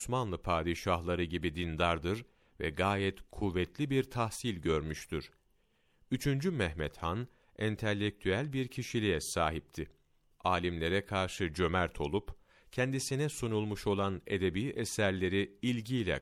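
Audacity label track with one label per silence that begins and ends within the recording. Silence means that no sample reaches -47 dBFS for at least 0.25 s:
2.220000	2.600000	silence
5.270000	6.110000	silence
7.250000	7.580000	silence
9.870000	10.400000	silence
12.330000	12.730000	silence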